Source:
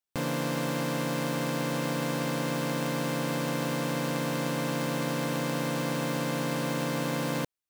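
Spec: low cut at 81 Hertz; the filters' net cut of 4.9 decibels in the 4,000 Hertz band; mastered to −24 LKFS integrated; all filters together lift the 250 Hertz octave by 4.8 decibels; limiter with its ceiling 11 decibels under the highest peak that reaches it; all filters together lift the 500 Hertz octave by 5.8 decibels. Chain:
high-pass filter 81 Hz
parametric band 250 Hz +4.5 dB
parametric band 500 Hz +5.5 dB
parametric band 4,000 Hz −6.5 dB
level +8 dB
brickwall limiter −16 dBFS

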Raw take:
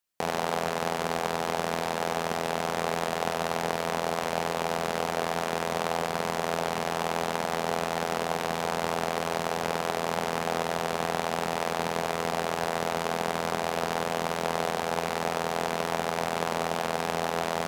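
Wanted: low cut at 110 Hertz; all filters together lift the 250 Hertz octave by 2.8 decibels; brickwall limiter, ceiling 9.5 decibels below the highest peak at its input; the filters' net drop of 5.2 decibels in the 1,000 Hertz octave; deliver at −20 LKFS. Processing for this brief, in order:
high-pass filter 110 Hz
parametric band 250 Hz +4.5 dB
parametric band 1,000 Hz −7.5 dB
level +17 dB
brickwall limiter −3 dBFS

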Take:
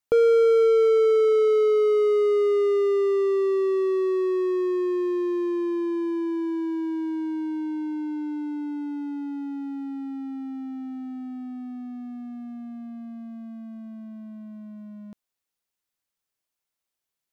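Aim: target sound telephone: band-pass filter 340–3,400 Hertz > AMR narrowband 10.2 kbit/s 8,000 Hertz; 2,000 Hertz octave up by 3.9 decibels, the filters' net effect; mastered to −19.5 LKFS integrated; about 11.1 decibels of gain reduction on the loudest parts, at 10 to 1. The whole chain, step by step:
parametric band 2,000 Hz +5 dB
downward compressor 10 to 1, threshold −27 dBFS
band-pass filter 340–3,400 Hz
level +15.5 dB
AMR narrowband 10.2 kbit/s 8,000 Hz

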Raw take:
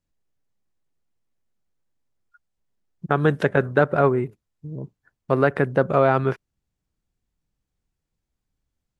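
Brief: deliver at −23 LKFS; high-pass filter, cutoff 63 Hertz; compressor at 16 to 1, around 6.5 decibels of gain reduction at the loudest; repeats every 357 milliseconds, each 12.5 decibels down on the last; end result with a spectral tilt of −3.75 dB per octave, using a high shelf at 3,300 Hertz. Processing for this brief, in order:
high-pass filter 63 Hz
high-shelf EQ 3,300 Hz +7 dB
downward compressor 16 to 1, threshold −18 dBFS
repeating echo 357 ms, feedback 24%, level −12.5 dB
level +3.5 dB

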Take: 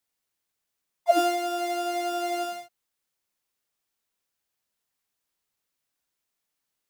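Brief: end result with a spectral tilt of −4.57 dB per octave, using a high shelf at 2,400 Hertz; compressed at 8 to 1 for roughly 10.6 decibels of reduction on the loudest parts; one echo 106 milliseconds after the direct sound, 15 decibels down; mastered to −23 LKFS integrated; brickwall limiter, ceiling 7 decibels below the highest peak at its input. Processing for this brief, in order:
high-shelf EQ 2,400 Hz +8.5 dB
downward compressor 8 to 1, threshold −25 dBFS
brickwall limiter −24 dBFS
single-tap delay 106 ms −15 dB
level +9.5 dB

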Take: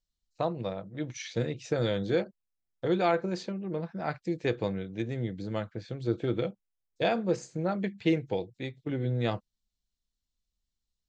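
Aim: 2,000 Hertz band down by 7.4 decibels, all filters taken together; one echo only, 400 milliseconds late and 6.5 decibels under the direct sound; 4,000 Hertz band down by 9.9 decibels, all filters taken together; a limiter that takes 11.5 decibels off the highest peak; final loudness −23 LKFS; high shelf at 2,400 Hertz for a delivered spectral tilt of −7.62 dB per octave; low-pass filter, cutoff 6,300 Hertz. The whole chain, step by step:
low-pass filter 6,300 Hz
parametric band 2,000 Hz −6.5 dB
high-shelf EQ 2,400 Hz −3.5 dB
parametric band 4,000 Hz −6.5 dB
brickwall limiter −27 dBFS
single-tap delay 400 ms −6.5 dB
level +14.5 dB

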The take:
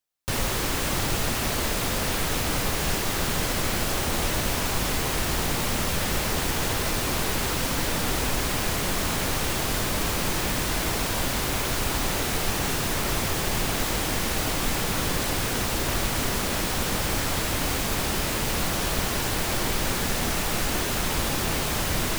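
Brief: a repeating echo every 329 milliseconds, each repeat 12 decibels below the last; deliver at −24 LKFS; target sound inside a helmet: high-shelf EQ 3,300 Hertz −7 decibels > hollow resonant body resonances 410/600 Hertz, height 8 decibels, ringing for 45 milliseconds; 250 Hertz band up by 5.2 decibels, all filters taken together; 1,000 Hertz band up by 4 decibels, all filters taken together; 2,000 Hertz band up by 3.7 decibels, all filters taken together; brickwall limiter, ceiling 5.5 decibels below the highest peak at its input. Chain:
parametric band 250 Hz +6.5 dB
parametric band 1,000 Hz +4 dB
parametric band 2,000 Hz +5.5 dB
brickwall limiter −15 dBFS
high-shelf EQ 3,300 Hz −7 dB
repeating echo 329 ms, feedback 25%, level −12 dB
hollow resonant body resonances 410/600 Hz, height 8 dB, ringing for 45 ms
level +1 dB

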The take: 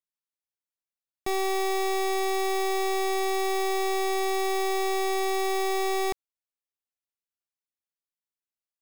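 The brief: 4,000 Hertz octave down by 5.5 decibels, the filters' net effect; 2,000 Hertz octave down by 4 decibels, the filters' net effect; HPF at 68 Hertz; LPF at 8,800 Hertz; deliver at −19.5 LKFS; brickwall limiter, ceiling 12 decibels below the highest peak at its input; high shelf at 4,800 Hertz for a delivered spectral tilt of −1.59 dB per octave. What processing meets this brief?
high-pass filter 68 Hz
low-pass filter 8,800 Hz
parametric band 2,000 Hz −3 dB
parametric band 4,000 Hz −9 dB
high-shelf EQ 4,800 Hz +6 dB
level +20 dB
brickwall limiter −13.5 dBFS

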